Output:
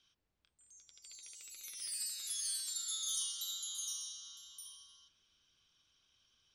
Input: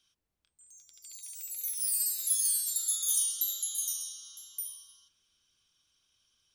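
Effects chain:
low-pass filter 5,000 Hz 12 dB per octave
level +1.5 dB

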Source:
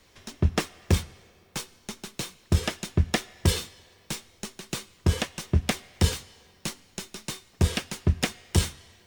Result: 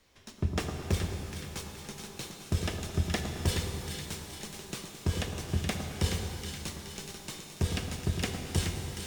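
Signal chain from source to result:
echo with a time of its own for lows and highs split 1,300 Hz, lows 107 ms, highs 423 ms, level −6.5 dB
reverb with rising layers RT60 3.2 s, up +12 semitones, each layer −8 dB, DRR 5 dB
level −7.5 dB

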